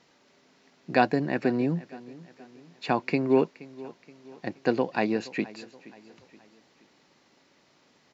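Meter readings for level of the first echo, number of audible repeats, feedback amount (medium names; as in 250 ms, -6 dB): -19.5 dB, 3, 45%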